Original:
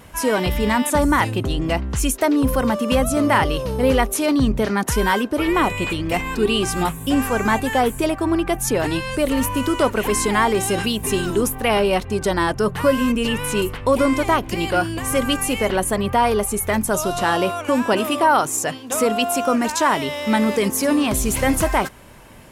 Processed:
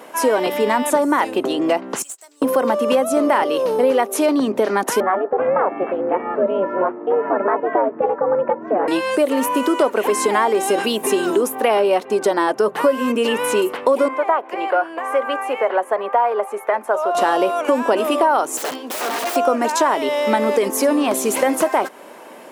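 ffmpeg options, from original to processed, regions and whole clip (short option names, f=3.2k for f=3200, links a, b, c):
-filter_complex "[0:a]asettb=1/sr,asplit=3[a][b][c];[a]atrim=end=2.024[d];[b]atrim=start=2.02:end=2.42,asetpts=PTS-STARTPTS,afade=t=in:d=0.004:c=qsin,afade=t=out:st=0.396:d=0.004:c=qsin,bandpass=f=7.8k:t=q:w=7.4,acrusher=bits=3:mode=log:mix=0:aa=0.000001[e];[c]atrim=start=2.416[f];[d][e]acrossfade=d=0.004:c1=hsin:c2=qsin[g];[g][f]acrossfade=d=0.004:c1=qsin:c2=hsin,asettb=1/sr,asplit=3[h][i][j];[h]atrim=end=5.004[k];[i]atrim=start=5:end=8.88,asetpts=PTS-STARTPTS,afade=t=in:d=0.004:c=qsin,afade=t=out:st=3.876:d=0.004:c=qsin,lowpass=f=1.6k:w=0.5412,lowpass=f=1.6k:w=1.3066,aeval=exprs='val(0)*sin(2*PI*190*n/s)':c=same[l];[j]atrim=start=8.876[m];[k][l]acrossfade=d=0.004:c1=hsin:c2=qsin[n];[n][m]acrossfade=d=0.004:c1=qsin:c2=hsin,asettb=1/sr,asplit=3[o][p][q];[o]atrim=end=14.084[r];[p]atrim=start=14.08:end=17.15,asetpts=PTS-STARTPTS,afade=t=in:d=0.004:c=qsin,afade=t=out:st=3.066:d=0.004:c=qsin,highpass=160,acrossover=split=500 2200:gain=0.112 1 0.0891[s][t][u];[s][t][u]amix=inputs=3:normalize=0[v];[q]atrim=start=17.146[w];[r][v]acrossfade=d=0.004:c1=hsin:c2=qsin[x];[x][w]acrossfade=d=0.004:c1=qsin:c2=hsin,asettb=1/sr,asplit=3[y][z][aa];[y]atrim=end=18.574[ab];[z]atrim=start=18.57:end=19.36,asetpts=PTS-STARTPTS,afade=t=in:d=0.004:c=qsin,afade=t=out:st=0.786:d=0.004:c=qsin,acompressor=threshold=-22dB:ratio=16:attack=3.2:release=140:knee=1:detection=peak,aeval=exprs='(mod(15.8*val(0)+1,2)-1)/15.8':c=same[ac];[aa]atrim=start=19.356[ad];[ab][ac]acrossfade=d=0.004:c1=hsin:c2=qsin[ae];[ae][ad]acrossfade=d=0.004:c1=qsin:c2=hsin,highpass=f=250:w=0.5412,highpass=f=250:w=1.3066,equalizer=f=600:t=o:w=2.4:g=9.5,acompressor=threshold=-16dB:ratio=3,volume=1dB"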